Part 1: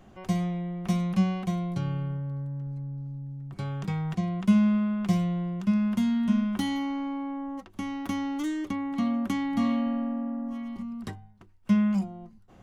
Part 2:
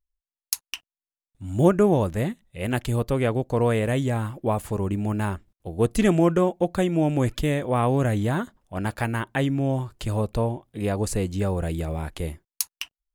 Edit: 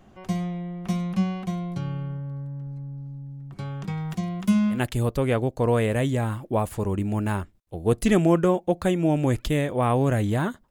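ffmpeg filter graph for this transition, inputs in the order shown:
-filter_complex "[0:a]asettb=1/sr,asplit=3[s0][s1][s2];[s0]atrim=end=3.974[s3];[s1]atrim=start=3.97:end=4.81,asetpts=PTS-STARTPTS,afade=t=in:d=0.004:c=qsin,afade=t=out:st=0.836:d=0.004:c=qsin,aemphasis=mode=production:type=50kf[s4];[s2]atrim=start=4.806[s5];[s3][s4]acrossfade=d=0.004:c1=hsin:c2=qsin[s6];[s6][s5]acrossfade=d=0.004:c1=qsin:c2=hsin,apad=whole_dur=10.7,atrim=end=10.7,atrim=end=4.81,asetpts=PTS-STARTPTS[s7];[1:a]atrim=start=2.62:end=8.63,asetpts=PTS-STARTPTS[s8];[s7][s8]acrossfade=d=0.12:c1=tri:c2=tri"

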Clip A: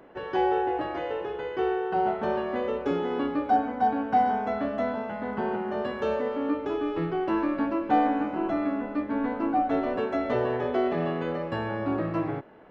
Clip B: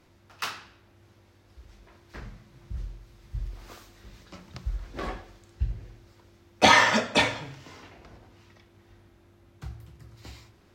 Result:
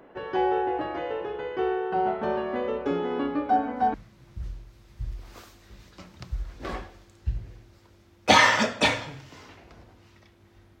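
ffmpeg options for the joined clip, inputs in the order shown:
-filter_complex "[1:a]asplit=2[s0][s1];[0:a]apad=whole_dur=10.8,atrim=end=10.8,atrim=end=3.942[s2];[s1]atrim=start=2.278:end=9.14[s3];[s0]atrim=start=1.88:end=2.28,asetpts=PTS-STARTPTS,volume=0.316,afade=t=in:d=0.004:c=hsin,afade=t=out:st=0.396:d=0.004:c=hsin,adelay=3540[s4];[s2][s3]acrossfade=d=0.004:c1=hsin:c2=hsin[s5];[s5][s4]amix=inputs=2:normalize=0"

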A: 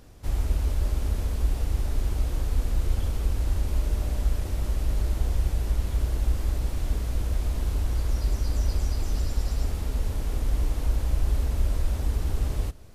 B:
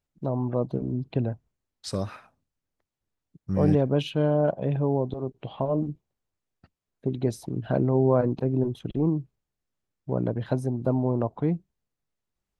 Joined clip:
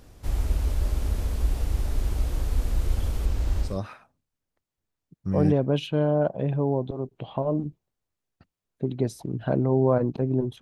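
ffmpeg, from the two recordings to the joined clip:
-filter_complex "[0:a]asettb=1/sr,asplit=3[s0][s1][s2];[s0]atrim=end=3.254[s3];[s1]atrim=start=3.25:end=3.79,asetpts=PTS-STARTPTS,afade=t=in:d=0.004:c=qsin,afade=t=out:st=0.536:d=0.004:c=qsin,equalizer=f=11000:w=1.6:g=-8[s4];[s2]atrim=start=3.786[s5];[s3][s4]acrossfade=d=0.004:c1=hsin:c2=qsin[s6];[s6][s5]acrossfade=d=0.004:c1=qsin:c2=hsin,apad=whole_dur=10.61,atrim=end=10.61,atrim=end=3.79,asetpts=PTS-STARTPTS[s7];[1:a]atrim=start=1.84:end=8.84,asetpts=PTS-STARTPTS[s8];[s7][s8]acrossfade=d=0.18:c1=tri:c2=tri"

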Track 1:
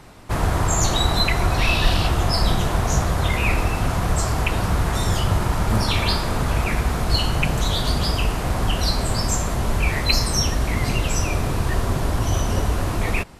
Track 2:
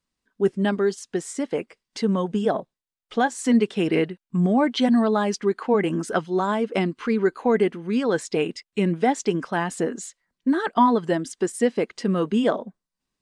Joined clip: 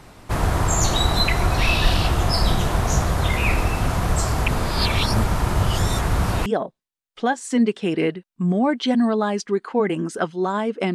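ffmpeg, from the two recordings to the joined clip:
-filter_complex "[0:a]apad=whole_dur=10.94,atrim=end=10.94,asplit=2[s0][s1];[s0]atrim=end=4.482[s2];[s1]atrim=start=4.478:end=6.462,asetpts=PTS-STARTPTS,areverse[s3];[1:a]atrim=start=2.398:end=6.88[s4];[s2][s3]acrossfade=d=0.004:c1=hsin:c2=hsin[s5];[s5][s4]acrossfade=d=0.004:c1=hsin:c2=hsin"

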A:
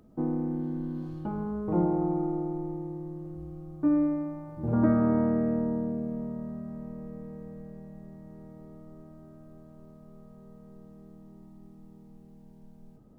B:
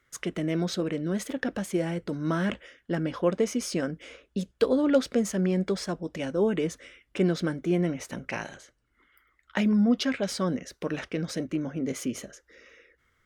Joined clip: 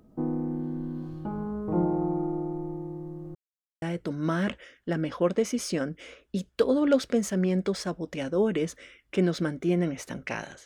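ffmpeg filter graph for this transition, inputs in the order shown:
-filter_complex "[0:a]apad=whole_dur=10.65,atrim=end=10.65,asplit=2[s0][s1];[s0]atrim=end=3.35,asetpts=PTS-STARTPTS,afade=t=out:st=3.346:d=0.004:c=hsin[s2];[s1]atrim=start=3.35:end=3.82,asetpts=PTS-STARTPTS,volume=0[s3];[1:a]atrim=start=1.84:end=8.67,asetpts=PTS-STARTPTS,afade=t=in:d=0.004:c=hsin[s4];[s2][s3][s4]concat=n=3:v=0:a=1"

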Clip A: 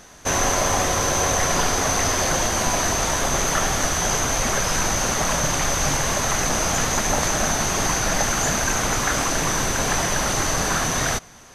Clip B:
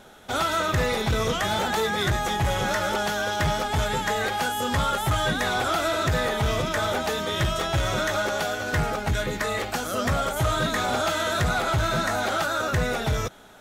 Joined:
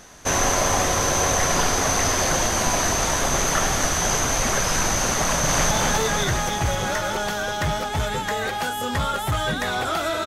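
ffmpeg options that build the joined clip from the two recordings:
-filter_complex "[0:a]apad=whole_dur=10.26,atrim=end=10.26,atrim=end=5.712[s0];[1:a]atrim=start=1.498:end=6.05[s1];[s0][s1]acrossfade=d=0.004:c1=hsin:c2=hsin,asplit=2[s2][s3];[s3]afade=t=in:st=5.21:d=0.01,afade=t=out:st=5.71:d=0.01,aecho=0:1:260|520|780|1040|1300|1560|1820|2080|2340|2600|2860|3120:0.707946|0.530959|0.39822|0.298665|0.223998|0.167999|0.125999|0.0944994|0.0708745|0.0531559|0.0398669|0.0299002[s4];[s2][s4]amix=inputs=2:normalize=0"

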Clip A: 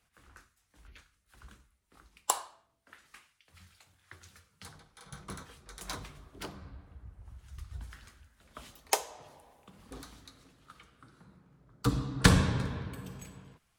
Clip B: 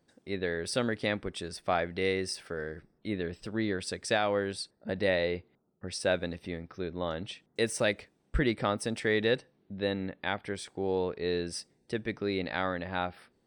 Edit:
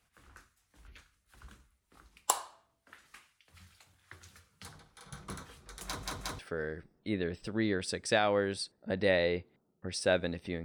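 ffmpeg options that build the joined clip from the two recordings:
-filter_complex "[0:a]apad=whole_dur=10.64,atrim=end=10.64,asplit=3[s0][s1][s2];[s0]atrim=end=6.032[s3];[s1]atrim=start=5.848:end=6.032[s4];[s2]atrim=start=5.848:end=6.032[s5];[1:a]atrim=start=2.378:end=6.63[s6];[s3][s4]acrossfade=d=0.004:c1=hsin:c2=hsin[s7];[s7][s5]acrossfade=d=0.004:c1=hsin:c2=hsin[s8];[s8][s6]acrossfade=d=0.004:c1=hsin:c2=hsin"

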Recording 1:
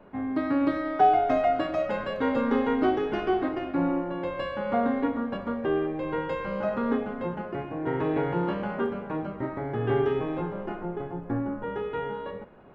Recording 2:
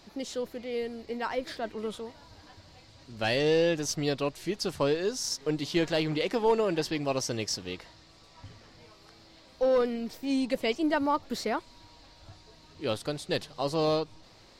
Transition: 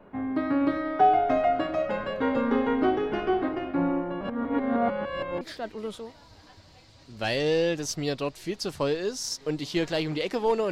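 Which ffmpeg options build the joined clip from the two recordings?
-filter_complex "[0:a]apad=whole_dur=10.71,atrim=end=10.71,asplit=2[s0][s1];[s0]atrim=end=4.212[s2];[s1]atrim=start=4.208:end=5.412,asetpts=PTS-STARTPTS,areverse[s3];[1:a]atrim=start=1.408:end=6.71[s4];[s2][s3]acrossfade=d=0.004:c1=hsin:c2=hsin[s5];[s5][s4]acrossfade=d=0.004:c1=hsin:c2=hsin"

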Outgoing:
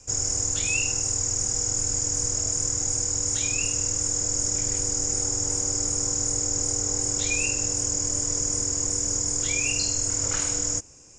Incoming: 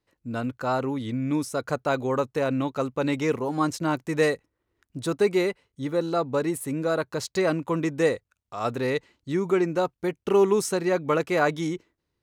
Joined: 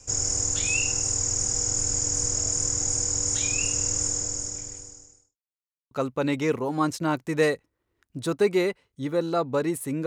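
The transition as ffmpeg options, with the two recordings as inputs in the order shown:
-filter_complex "[0:a]apad=whole_dur=10.06,atrim=end=10.06,asplit=2[s0][s1];[s0]atrim=end=5.37,asetpts=PTS-STARTPTS,afade=t=out:st=4.03:d=1.34:c=qua[s2];[s1]atrim=start=5.37:end=5.91,asetpts=PTS-STARTPTS,volume=0[s3];[1:a]atrim=start=2.71:end=6.86,asetpts=PTS-STARTPTS,afade=t=in:d=0.004:c=hsin[s4];[s2][s3][s4]concat=n=3:v=0:a=1"

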